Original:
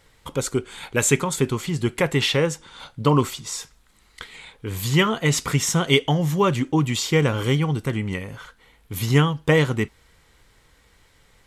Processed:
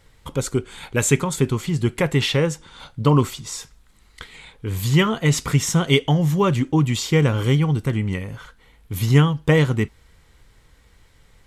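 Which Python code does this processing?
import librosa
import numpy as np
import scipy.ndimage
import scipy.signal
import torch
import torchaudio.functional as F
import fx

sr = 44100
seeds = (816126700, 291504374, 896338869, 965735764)

y = fx.low_shelf(x, sr, hz=190.0, db=7.5)
y = F.gain(torch.from_numpy(y), -1.0).numpy()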